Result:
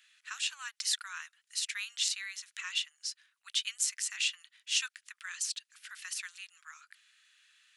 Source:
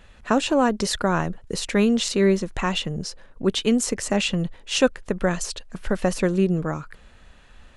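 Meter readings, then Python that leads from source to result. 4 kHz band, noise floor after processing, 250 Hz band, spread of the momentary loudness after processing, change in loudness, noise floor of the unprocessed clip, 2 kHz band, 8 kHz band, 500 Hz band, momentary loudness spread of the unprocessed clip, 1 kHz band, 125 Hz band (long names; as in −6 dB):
−4.5 dB, −83 dBFS, below −40 dB, 16 LU, −11.0 dB, −51 dBFS, −8.5 dB, −3.5 dB, below −40 dB, 10 LU, −24.0 dB, below −40 dB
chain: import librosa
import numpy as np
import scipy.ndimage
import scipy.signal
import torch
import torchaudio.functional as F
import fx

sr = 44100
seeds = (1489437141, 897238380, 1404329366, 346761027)

y = scipy.signal.sosfilt(scipy.signal.bessel(8, 2600.0, 'highpass', norm='mag', fs=sr, output='sos'), x)
y = y * librosa.db_to_amplitude(-3.0)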